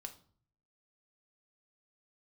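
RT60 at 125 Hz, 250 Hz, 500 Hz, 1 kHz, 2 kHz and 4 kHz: 0.85 s, 0.65 s, 0.50 s, 0.50 s, 0.35 s, 0.35 s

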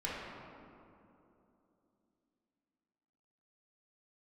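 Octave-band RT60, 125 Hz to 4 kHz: 3.1 s, 3.9 s, 3.2 s, 2.7 s, 1.9 s, 1.3 s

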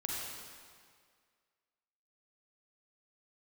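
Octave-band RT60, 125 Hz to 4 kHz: 1.8 s, 1.8 s, 2.0 s, 1.9 s, 1.8 s, 1.7 s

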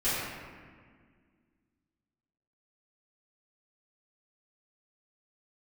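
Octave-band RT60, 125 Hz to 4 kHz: 2.3 s, 2.7 s, 1.9 s, 1.7 s, 1.7 s, 1.1 s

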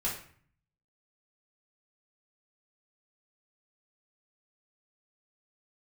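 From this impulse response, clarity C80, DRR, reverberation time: 10.0 dB, -6.0 dB, 0.50 s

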